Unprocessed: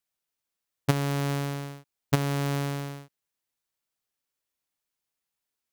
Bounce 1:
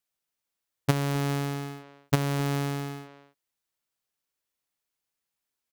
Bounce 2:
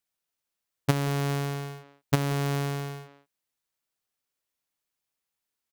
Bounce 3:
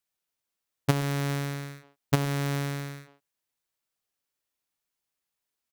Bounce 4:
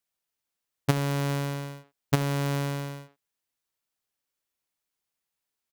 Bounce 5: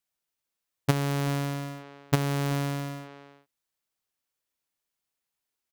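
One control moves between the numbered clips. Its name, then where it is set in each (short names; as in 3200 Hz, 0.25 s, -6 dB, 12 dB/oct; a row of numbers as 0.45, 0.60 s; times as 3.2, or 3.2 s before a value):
speakerphone echo, time: 260, 180, 120, 80, 380 ms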